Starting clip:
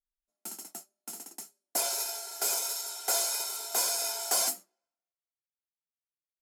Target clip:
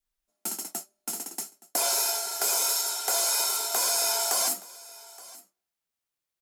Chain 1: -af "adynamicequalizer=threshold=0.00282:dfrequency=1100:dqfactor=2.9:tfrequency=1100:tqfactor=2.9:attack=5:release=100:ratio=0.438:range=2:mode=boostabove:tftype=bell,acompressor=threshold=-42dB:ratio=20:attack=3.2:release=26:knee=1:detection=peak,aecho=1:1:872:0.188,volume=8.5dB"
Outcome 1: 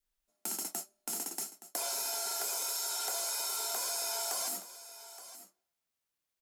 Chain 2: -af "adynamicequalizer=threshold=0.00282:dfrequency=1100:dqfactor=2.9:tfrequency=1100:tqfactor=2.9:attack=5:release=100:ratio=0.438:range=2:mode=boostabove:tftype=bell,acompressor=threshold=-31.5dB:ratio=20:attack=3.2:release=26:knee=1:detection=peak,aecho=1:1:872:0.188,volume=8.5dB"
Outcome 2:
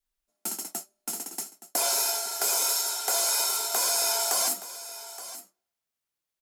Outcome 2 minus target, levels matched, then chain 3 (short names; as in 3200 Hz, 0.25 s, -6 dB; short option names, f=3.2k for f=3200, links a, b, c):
echo-to-direct +6 dB
-af "adynamicequalizer=threshold=0.00282:dfrequency=1100:dqfactor=2.9:tfrequency=1100:tqfactor=2.9:attack=5:release=100:ratio=0.438:range=2:mode=boostabove:tftype=bell,acompressor=threshold=-31.5dB:ratio=20:attack=3.2:release=26:knee=1:detection=peak,aecho=1:1:872:0.0944,volume=8.5dB"